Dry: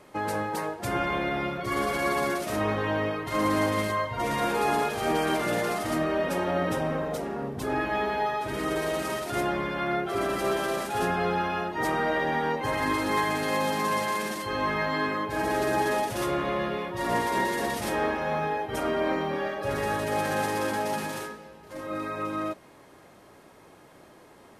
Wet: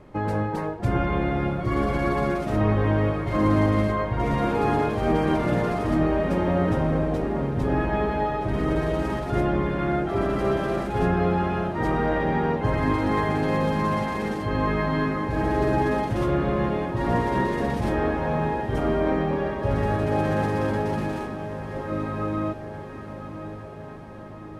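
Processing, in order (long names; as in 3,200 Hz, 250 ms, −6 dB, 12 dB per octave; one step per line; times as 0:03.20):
RIAA equalisation playback
feedback delay with all-pass diffusion 1,081 ms, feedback 62%, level −11 dB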